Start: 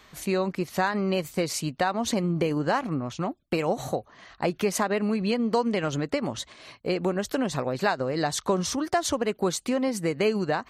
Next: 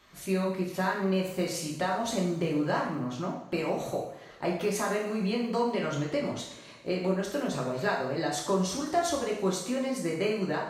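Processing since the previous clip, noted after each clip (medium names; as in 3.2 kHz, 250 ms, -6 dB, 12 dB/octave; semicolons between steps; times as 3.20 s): short-mantissa float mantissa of 6-bit; two-slope reverb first 0.64 s, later 2.3 s, DRR -3.5 dB; trim -8.5 dB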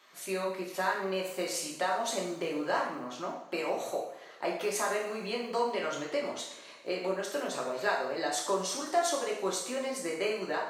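high-pass 420 Hz 12 dB/octave; dynamic bell 8.4 kHz, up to +3 dB, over -54 dBFS, Q 2.4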